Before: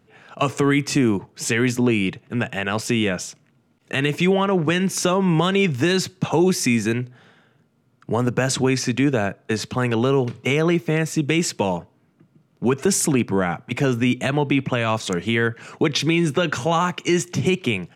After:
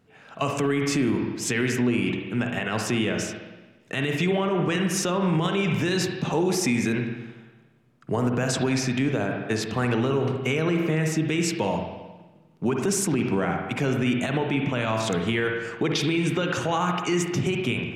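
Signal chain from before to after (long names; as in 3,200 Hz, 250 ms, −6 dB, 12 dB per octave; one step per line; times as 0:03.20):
spring reverb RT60 1.2 s, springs 45/57 ms, chirp 30 ms, DRR 4 dB
brickwall limiter −12 dBFS, peak gain reduction 7.5 dB
level −3 dB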